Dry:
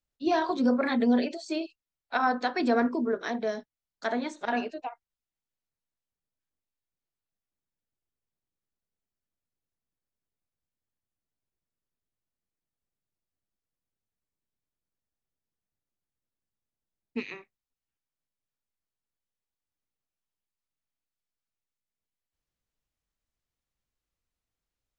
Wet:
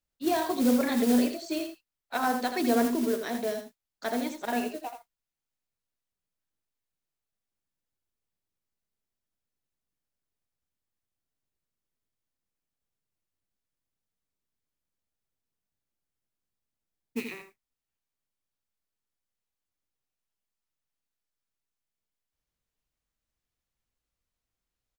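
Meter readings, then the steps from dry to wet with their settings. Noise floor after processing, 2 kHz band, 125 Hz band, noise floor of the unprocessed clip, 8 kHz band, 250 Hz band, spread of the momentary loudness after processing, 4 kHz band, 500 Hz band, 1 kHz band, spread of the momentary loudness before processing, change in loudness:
under -85 dBFS, -2.5 dB, +1.0 dB, under -85 dBFS, no reading, +1.0 dB, 15 LU, +1.5 dB, -0.5 dB, -2.0 dB, 15 LU, 0.0 dB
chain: dynamic bell 1.3 kHz, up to -5 dB, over -42 dBFS, Q 1; modulation noise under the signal 15 dB; delay 82 ms -8 dB

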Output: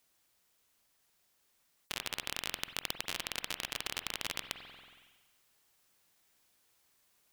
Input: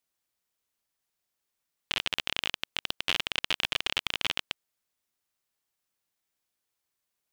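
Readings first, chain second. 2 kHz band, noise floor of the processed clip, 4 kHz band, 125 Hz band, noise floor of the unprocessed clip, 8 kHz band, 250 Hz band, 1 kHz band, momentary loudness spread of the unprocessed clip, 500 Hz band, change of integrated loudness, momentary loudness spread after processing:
-8.5 dB, -74 dBFS, -9.5 dB, -5.0 dB, -84 dBFS, +1.5 dB, -5.0 dB, -5.5 dB, 6 LU, -5.0 dB, -8.0 dB, 7 LU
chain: gain riding; spring tank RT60 1.1 s, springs 46 ms, chirp 50 ms, DRR 12.5 dB; spectrum-flattening compressor 2:1; trim -5 dB

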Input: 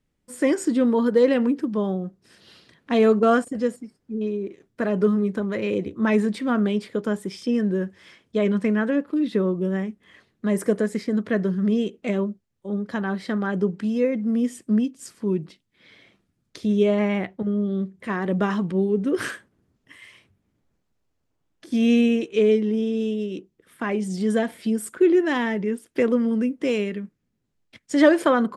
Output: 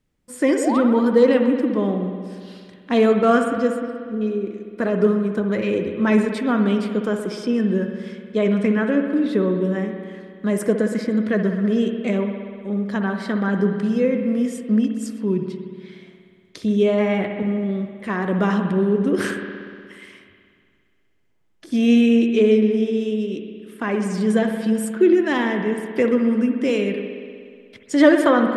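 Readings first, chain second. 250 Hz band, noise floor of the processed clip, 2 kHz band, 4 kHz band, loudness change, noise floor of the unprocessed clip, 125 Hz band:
+3.0 dB, -58 dBFS, +3.0 dB, +3.0 dB, +3.0 dB, -74 dBFS, +3.0 dB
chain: painted sound rise, 0.57–0.81 s, 400–1500 Hz -27 dBFS; spring tank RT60 2.1 s, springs 60 ms, chirp 70 ms, DRR 5 dB; trim +2 dB

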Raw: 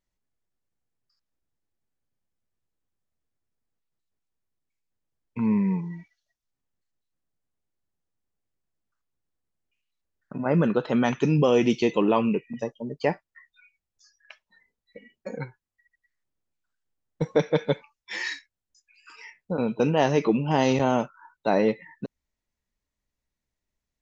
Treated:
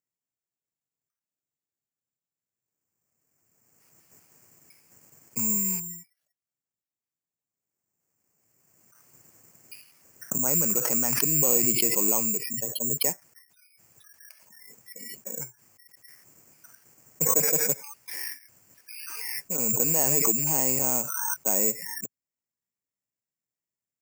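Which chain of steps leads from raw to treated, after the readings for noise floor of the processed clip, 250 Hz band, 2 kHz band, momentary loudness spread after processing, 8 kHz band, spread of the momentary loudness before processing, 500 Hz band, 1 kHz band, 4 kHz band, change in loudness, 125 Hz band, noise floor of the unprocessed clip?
under -85 dBFS, -10.0 dB, -4.5 dB, 17 LU, no reading, 18 LU, -9.0 dB, -8.5 dB, +0.5 dB, +1.5 dB, -9.0 dB, under -85 dBFS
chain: rattle on loud lows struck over -28 dBFS, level -27 dBFS; Chebyshev band-pass 110–2500 Hz, order 3; careless resampling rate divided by 6×, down filtered, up zero stuff; swell ahead of each attack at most 23 dB/s; trim -10.5 dB

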